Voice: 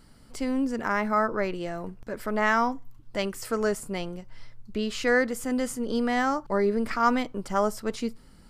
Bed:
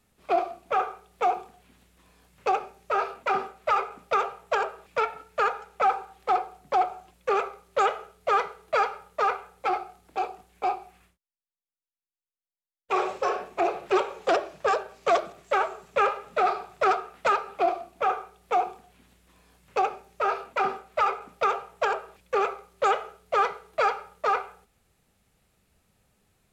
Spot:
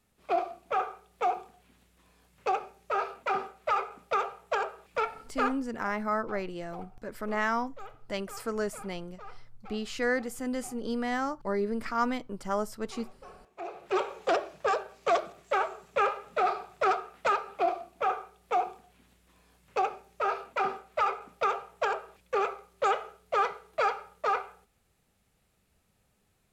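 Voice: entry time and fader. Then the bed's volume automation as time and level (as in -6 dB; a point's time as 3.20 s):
4.95 s, -5.5 dB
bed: 5.45 s -4 dB
5.70 s -23.5 dB
13.33 s -23.5 dB
14.02 s -3.5 dB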